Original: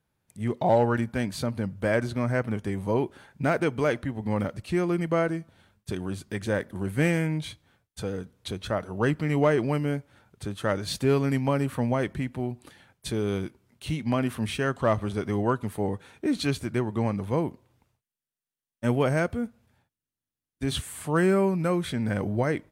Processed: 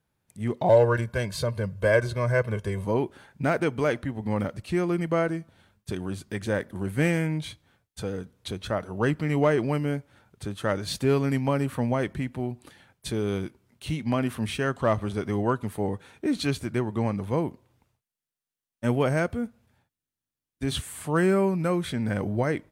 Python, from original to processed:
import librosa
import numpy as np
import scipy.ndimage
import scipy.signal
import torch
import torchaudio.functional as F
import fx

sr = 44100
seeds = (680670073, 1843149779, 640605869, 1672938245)

y = fx.comb(x, sr, ms=1.9, depth=0.82, at=(0.69, 2.85))